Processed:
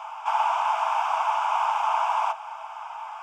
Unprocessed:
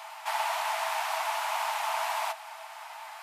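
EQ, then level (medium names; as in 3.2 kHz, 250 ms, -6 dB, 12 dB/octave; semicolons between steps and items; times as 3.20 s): tilt EQ -5 dB/octave; bass shelf 490 Hz +7.5 dB; static phaser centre 2.8 kHz, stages 8; +8.0 dB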